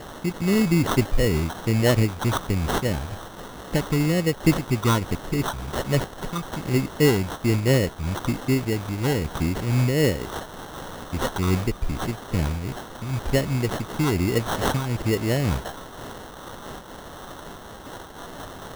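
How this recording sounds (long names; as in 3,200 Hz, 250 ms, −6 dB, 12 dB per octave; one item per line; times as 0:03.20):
a quantiser's noise floor 6 bits, dither triangular
phaser sweep stages 8, 1.2 Hz, lowest notch 600–1,700 Hz
aliases and images of a low sample rate 2,400 Hz, jitter 0%
amplitude modulation by smooth noise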